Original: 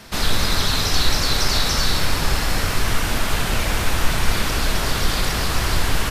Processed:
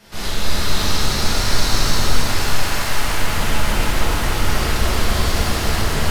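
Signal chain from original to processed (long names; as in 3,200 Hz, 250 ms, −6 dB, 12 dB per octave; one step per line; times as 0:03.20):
0:02.11–0:02.97: high-pass filter 660 Hz 12 dB per octave
soft clipping −13 dBFS, distortion −15 dB
delay with a low-pass on its return 296 ms, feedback 72%, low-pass 1,700 Hz, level −3.5 dB
reverb with rising layers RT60 2.6 s, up +7 semitones, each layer −8 dB, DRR −10.5 dB
level −10 dB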